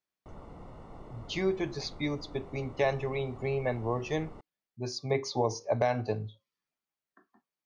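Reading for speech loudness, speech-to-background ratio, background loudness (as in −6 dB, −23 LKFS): −32.5 LKFS, 17.5 dB, −50.0 LKFS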